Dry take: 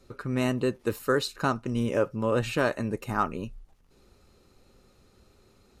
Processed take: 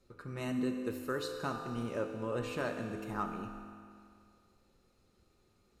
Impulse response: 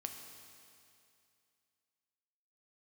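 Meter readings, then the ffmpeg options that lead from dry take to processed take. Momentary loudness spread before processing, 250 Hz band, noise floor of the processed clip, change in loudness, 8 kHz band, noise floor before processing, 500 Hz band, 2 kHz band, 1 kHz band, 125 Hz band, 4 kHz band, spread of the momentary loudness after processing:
6 LU, -8.0 dB, -71 dBFS, -9.5 dB, -10.0 dB, -62 dBFS, -10.0 dB, -10.0 dB, -9.5 dB, -11.0 dB, -10.5 dB, 12 LU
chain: -filter_complex "[1:a]atrim=start_sample=2205,asetrate=48510,aresample=44100[s0];[0:a][s0]afir=irnorm=-1:irlink=0,volume=0.447"

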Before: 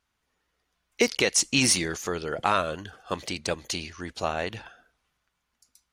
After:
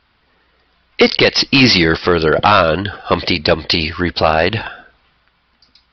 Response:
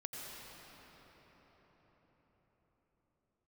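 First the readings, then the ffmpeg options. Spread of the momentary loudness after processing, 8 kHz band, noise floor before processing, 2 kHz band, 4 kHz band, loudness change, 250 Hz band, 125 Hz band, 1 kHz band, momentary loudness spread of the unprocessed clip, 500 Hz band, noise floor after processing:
8 LU, -8.0 dB, -79 dBFS, +14.0 dB, +14.5 dB, +13.0 dB, +15.0 dB, +16.5 dB, +14.0 dB, 14 LU, +15.0 dB, -60 dBFS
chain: -af "aresample=11025,volume=9.44,asoftclip=hard,volume=0.106,aresample=44100,alimiter=level_in=10.6:limit=0.891:release=50:level=0:latency=1,volume=0.891"

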